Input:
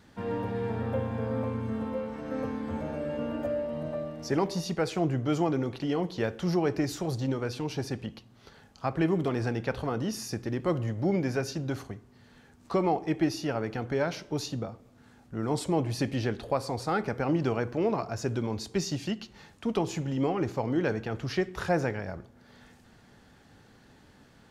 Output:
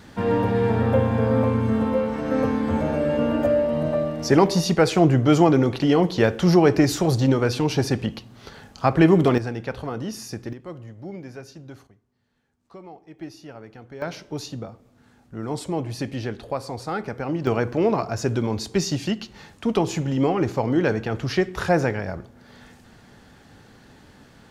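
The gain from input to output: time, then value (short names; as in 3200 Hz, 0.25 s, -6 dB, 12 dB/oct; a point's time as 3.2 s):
+11 dB
from 9.38 s +1 dB
from 10.53 s -9 dB
from 11.87 s -16 dB
from 13.19 s -10 dB
from 14.02 s +0.5 dB
from 17.47 s +7 dB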